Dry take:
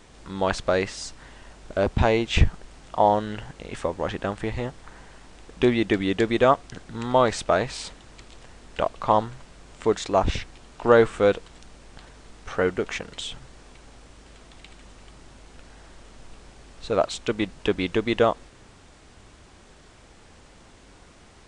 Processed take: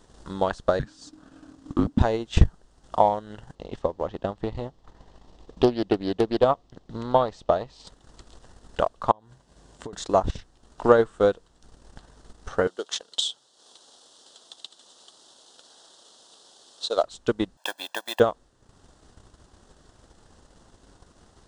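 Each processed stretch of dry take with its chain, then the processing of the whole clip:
0.79–1.99 high shelf 3200 Hz -4.5 dB + frequency shift -320 Hz
3.55–7.87 LPF 4900 Hz + bell 1500 Hz -10.5 dB 0.4 oct + Doppler distortion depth 0.33 ms
9.11–9.93 HPF 42 Hz + compressor 10:1, threshold -34 dBFS + notch 1300 Hz, Q 7.9
12.67–17.03 HPF 460 Hz + resonant high shelf 2800 Hz +6.5 dB, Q 3
17.57–18.2 block floating point 5-bit + HPF 490 Hz 24 dB/oct + comb 1.2 ms, depth 90%
whole clip: bell 2300 Hz -14 dB 0.47 oct; transient shaper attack +7 dB, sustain -9 dB; gain -4 dB

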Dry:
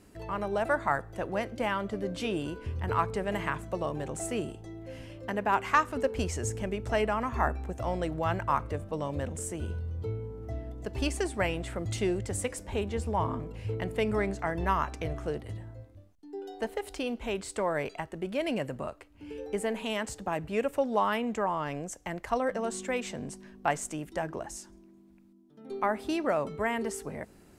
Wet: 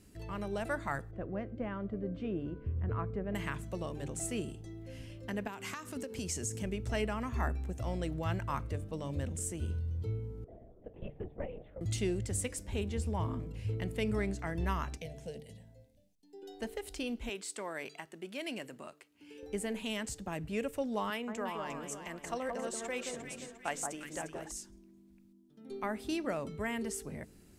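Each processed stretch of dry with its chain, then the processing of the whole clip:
1.11–3.35 LPF 1200 Hz + notch 890 Hz, Q 5.8
5.47–6.63 HPF 170 Hz + tone controls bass +6 dB, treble +6 dB + compressor 10:1, threshold -30 dBFS
10.44–11.81 band-pass 550 Hz, Q 2.5 + LPC vocoder at 8 kHz whisper
14.97–16.43 low shelf 120 Hz -8.5 dB + fixed phaser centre 330 Hz, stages 6
17.29–19.43 HPF 330 Hz + bell 510 Hz -5 dB 0.68 oct
21.1–24.52 tone controls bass -11 dB, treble -1 dB + echo with dull and thin repeats by turns 0.176 s, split 1400 Hz, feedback 64%, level -3.5 dB
whole clip: bell 870 Hz -10.5 dB 2.4 oct; de-hum 149.1 Hz, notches 3

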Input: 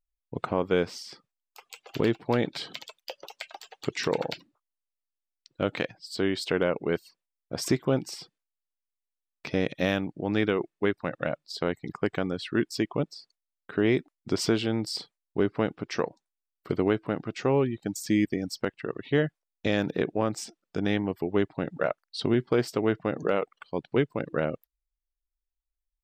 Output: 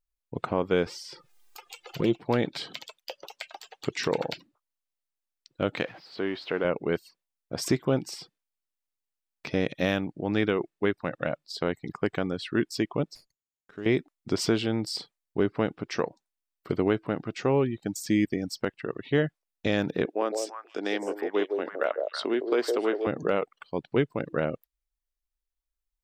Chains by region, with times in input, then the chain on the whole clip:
0.86–2.18 envelope flanger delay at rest 2.6 ms, full sweep at -20.5 dBFS + comb 5.7 ms, depth 43% + upward compressor, threshold -36 dBFS
5.84–6.65 zero-crossing step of -38 dBFS + HPF 380 Hz 6 dB/oct + air absorption 310 m
13.15–13.86 ladder low-pass 7100 Hz, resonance 90% + running maximum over 3 samples
20.05–23.07 HPF 310 Hz 24 dB/oct + delay with a stepping band-pass 0.162 s, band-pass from 500 Hz, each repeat 1.4 oct, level -2 dB
whole clip: dry

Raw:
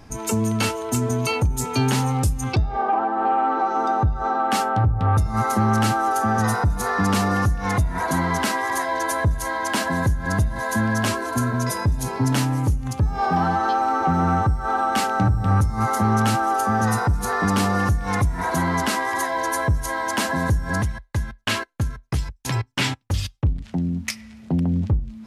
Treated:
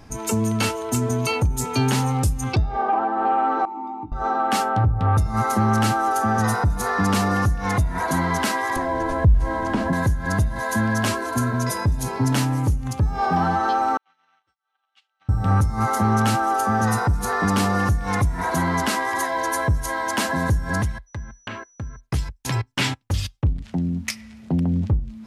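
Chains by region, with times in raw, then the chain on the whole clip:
3.65–4.12 vowel filter u + doubler 19 ms -7.5 dB
8.76–9.93 delta modulation 64 kbps, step -31.5 dBFS + tilt -4.5 dB/oct + compressor 2:1, threshold -20 dBFS
13.97–15.29 gate -18 dBFS, range -26 dB + ladder band-pass 3500 Hz, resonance 55% + tilt -3.5 dB/oct
21.06–21.99 treble ducked by the level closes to 1800 Hz, closed at -22.5 dBFS + compressor 1.5:1, threshold -42 dBFS + whine 5900 Hz -54 dBFS
whole clip: dry

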